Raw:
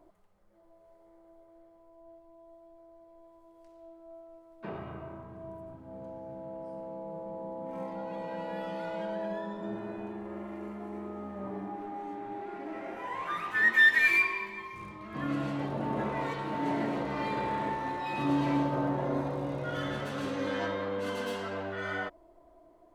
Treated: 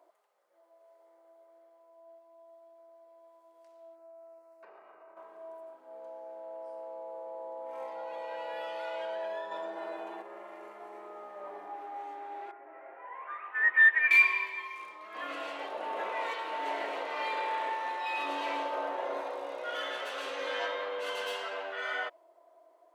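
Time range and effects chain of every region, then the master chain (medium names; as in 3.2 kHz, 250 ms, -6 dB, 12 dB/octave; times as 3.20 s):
3.95–5.17 s: peaking EQ 3.4 kHz -14.5 dB 0.31 oct + compression 10:1, threshold -47 dBFS
9.51–10.22 s: comb 6.3 ms, depth 77% + level flattener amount 70%
12.51–14.11 s: low-pass 2.1 kHz 24 dB/octave + upward expansion, over -33 dBFS
whole clip: high-pass 480 Hz 24 dB/octave; dynamic bell 2.8 kHz, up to +6 dB, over -54 dBFS, Q 1.6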